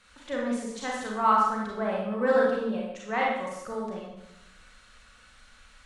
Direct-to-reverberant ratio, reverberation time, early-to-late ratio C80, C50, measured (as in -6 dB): -3.5 dB, 0.85 s, 3.5 dB, -0.5 dB